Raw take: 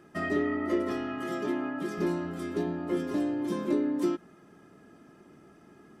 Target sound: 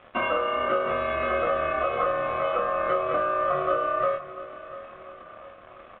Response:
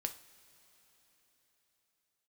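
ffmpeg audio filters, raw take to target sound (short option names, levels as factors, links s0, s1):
-filter_complex "[0:a]acrossover=split=2600[s0][s1];[s1]acompressor=threshold=0.00112:ratio=4:attack=1:release=60[s2];[s0][s2]amix=inputs=2:normalize=0,bandreject=f=1200:w=11,acompressor=threshold=0.02:ratio=6,aeval=exprs='sgn(val(0))*max(abs(val(0))-0.00158,0)':c=same,aeval=exprs='val(0)*sin(2*PI*900*n/s)':c=same,asplit=2[s3][s4];[s4]adelay=27,volume=0.631[s5];[s3][s5]amix=inputs=2:normalize=0,aecho=1:1:694|1388|2082|2776:0.168|0.0806|0.0387|0.0186,asplit=2[s6][s7];[1:a]atrim=start_sample=2205,highshelf=f=6600:g=-11.5[s8];[s7][s8]afir=irnorm=-1:irlink=0,volume=1.58[s9];[s6][s9]amix=inputs=2:normalize=0,aresample=8000,aresample=44100,volume=2.11"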